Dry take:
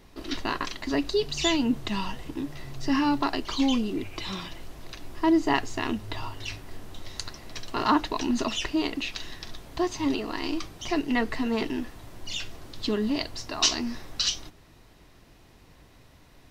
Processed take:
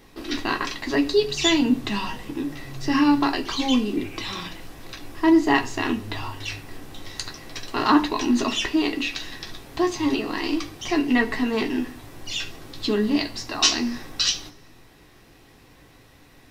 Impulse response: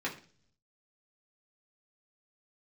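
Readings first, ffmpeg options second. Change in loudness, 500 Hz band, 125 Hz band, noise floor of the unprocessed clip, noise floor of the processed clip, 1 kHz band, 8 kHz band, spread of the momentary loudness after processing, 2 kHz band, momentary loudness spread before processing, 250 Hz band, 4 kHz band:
+5.0 dB, +4.5 dB, +2.5 dB, −55 dBFS, −52 dBFS, +3.5 dB, +4.0 dB, 16 LU, +6.0 dB, 16 LU, +5.0 dB, +4.5 dB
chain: -filter_complex "[0:a]asplit=2[link_01][link_02];[1:a]atrim=start_sample=2205,highshelf=frequency=4800:gain=12[link_03];[link_02][link_03]afir=irnorm=-1:irlink=0,volume=-6dB[link_04];[link_01][link_04]amix=inputs=2:normalize=0"

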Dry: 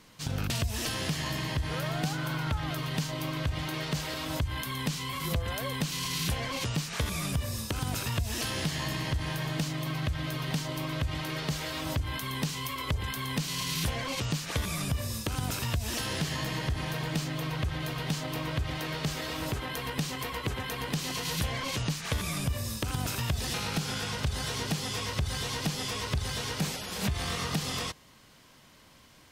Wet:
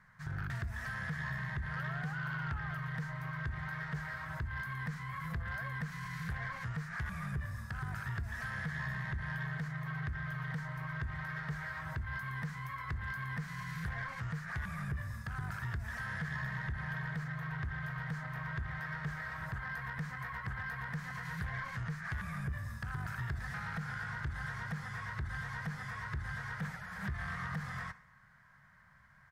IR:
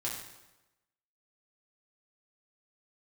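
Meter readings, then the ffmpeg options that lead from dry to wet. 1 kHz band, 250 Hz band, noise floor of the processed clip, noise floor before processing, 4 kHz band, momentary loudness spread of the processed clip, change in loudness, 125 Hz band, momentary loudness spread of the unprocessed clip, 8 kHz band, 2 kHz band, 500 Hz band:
−6.0 dB, −9.5 dB, −61 dBFS, −56 dBFS, −22.0 dB, 3 LU, −7.5 dB, −6.5 dB, 2 LU, −24.0 dB, −1.5 dB, −16.5 dB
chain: -filter_complex "[0:a]firequalizer=gain_entry='entry(180,0);entry(300,-26);entry(640,-7);entry(1700,10);entry(2700,-18)':delay=0.05:min_phase=1,asoftclip=type=tanh:threshold=-27dB,asplit=2[link_01][link_02];[1:a]atrim=start_sample=2205,asetrate=52920,aresample=44100[link_03];[link_02][link_03]afir=irnorm=-1:irlink=0,volume=-12.5dB[link_04];[link_01][link_04]amix=inputs=2:normalize=0,volume=-6dB"

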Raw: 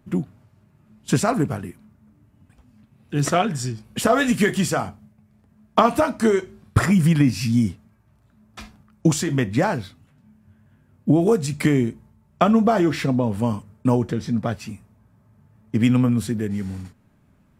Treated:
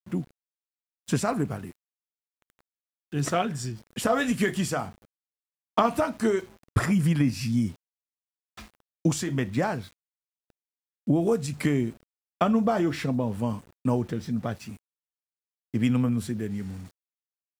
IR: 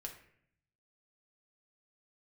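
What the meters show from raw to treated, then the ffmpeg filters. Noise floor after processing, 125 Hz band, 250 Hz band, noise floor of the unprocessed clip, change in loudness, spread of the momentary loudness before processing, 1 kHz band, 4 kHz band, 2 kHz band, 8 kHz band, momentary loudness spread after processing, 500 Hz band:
below −85 dBFS, −6.0 dB, −6.0 dB, −59 dBFS, −6.0 dB, 11 LU, −6.0 dB, −6.0 dB, −6.0 dB, −6.0 dB, 11 LU, −6.0 dB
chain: -af "aeval=exprs='val(0)*gte(abs(val(0)),0.0075)':channel_layout=same,volume=-6dB"

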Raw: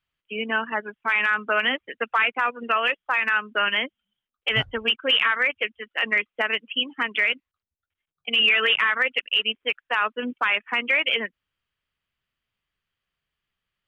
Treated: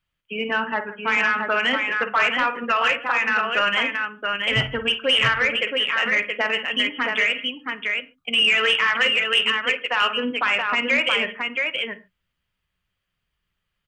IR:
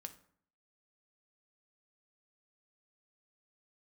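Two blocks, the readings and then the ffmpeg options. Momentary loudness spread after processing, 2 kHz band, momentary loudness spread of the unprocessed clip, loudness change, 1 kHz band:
8 LU, +2.5 dB, 9 LU, +2.0 dB, +3.0 dB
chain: -filter_complex "[0:a]aecho=1:1:51|162|674:0.282|0.106|0.596,asplit=2[link_01][link_02];[1:a]atrim=start_sample=2205,atrim=end_sample=6615,lowshelf=frequency=180:gain=10.5[link_03];[link_02][link_03]afir=irnorm=-1:irlink=0,volume=8.5dB[link_04];[link_01][link_04]amix=inputs=2:normalize=0,asoftclip=type=tanh:threshold=-3dB,volume=-6dB"

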